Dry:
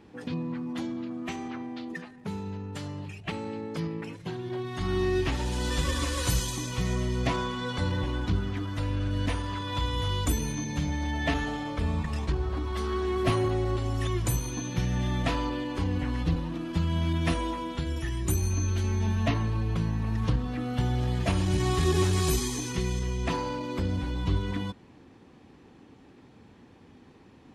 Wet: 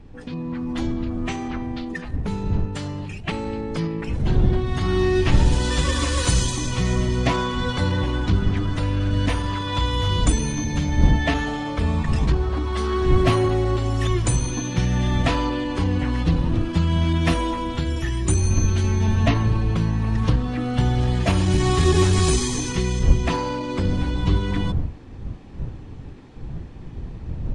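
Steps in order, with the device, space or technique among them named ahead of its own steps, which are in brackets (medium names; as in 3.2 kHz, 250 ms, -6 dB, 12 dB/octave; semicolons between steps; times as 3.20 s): smartphone video outdoors (wind noise 100 Hz; level rider gain up to 7 dB; AAC 96 kbps 22.05 kHz)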